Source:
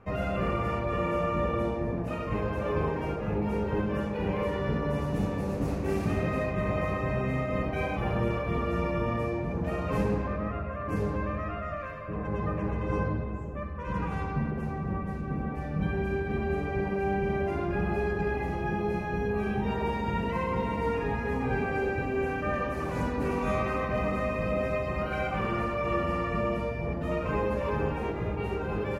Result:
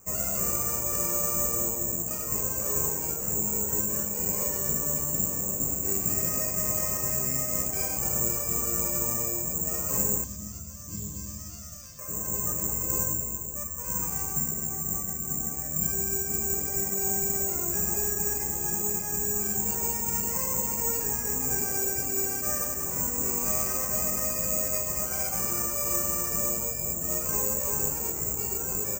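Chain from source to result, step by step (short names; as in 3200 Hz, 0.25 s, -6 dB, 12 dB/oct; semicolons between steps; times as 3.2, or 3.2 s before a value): careless resampling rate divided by 6×, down filtered, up zero stuff; 10.24–11.99 EQ curve 210 Hz 0 dB, 470 Hz -15 dB, 1500 Hz -14 dB, 2400 Hz -10 dB, 3500 Hz +11 dB, 8700 Hz -13 dB; gain -7 dB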